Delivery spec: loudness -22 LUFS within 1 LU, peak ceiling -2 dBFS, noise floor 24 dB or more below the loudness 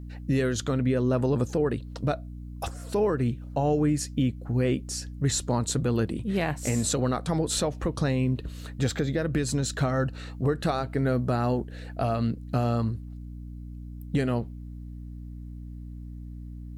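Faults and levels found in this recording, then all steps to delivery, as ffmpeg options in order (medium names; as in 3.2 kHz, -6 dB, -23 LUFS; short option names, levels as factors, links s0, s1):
hum 60 Hz; highest harmonic 300 Hz; hum level -36 dBFS; loudness -27.5 LUFS; peak level -15.0 dBFS; loudness target -22.0 LUFS
-> -af "bandreject=f=60:t=h:w=4,bandreject=f=120:t=h:w=4,bandreject=f=180:t=h:w=4,bandreject=f=240:t=h:w=4,bandreject=f=300:t=h:w=4"
-af "volume=1.88"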